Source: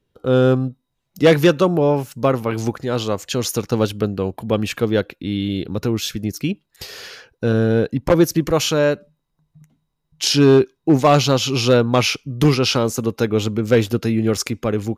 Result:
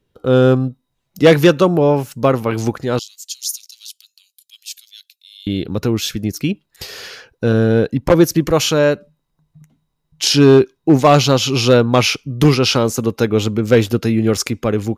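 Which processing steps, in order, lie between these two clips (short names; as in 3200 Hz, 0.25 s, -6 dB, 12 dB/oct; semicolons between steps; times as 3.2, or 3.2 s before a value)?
2.99–5.47 inverse Chebyshev high-pass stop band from 720 Hz, stop band 80 dB; gain +3 dB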